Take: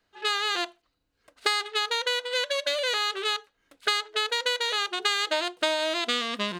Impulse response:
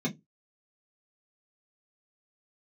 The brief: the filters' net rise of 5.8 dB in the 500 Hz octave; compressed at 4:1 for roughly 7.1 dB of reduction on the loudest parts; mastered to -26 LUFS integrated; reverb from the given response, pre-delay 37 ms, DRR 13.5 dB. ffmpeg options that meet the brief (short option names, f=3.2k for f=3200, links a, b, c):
-filter_complex "[0:a]equalizer=f=500:t=o:g=7,acompressor=threshold=-28dB:ratio=4,asplit=2[a][b];[1:a]atrim=start_sample=2205,adelay=37[c];[b][c]afir=irnorm=-1:irlink=0,volume=-19dB[d];[a][d]amix=inputs=2:normalize=0,volume=4.5dB"